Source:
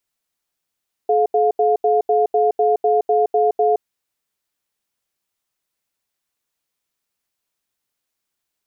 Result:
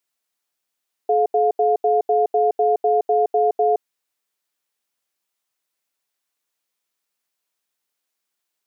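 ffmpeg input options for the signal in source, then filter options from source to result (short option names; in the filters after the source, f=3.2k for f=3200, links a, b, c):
-f lavfi -i "aevalsrc='0.168*(sin(2*PI*428*t)+sin(2*PI*708*t))*clip(min(mod(t,0.25),0.17-mod(t,0.25))/0.005,0,1)':d=2.68:s=44100"
-af "highpass=f=320:p=1"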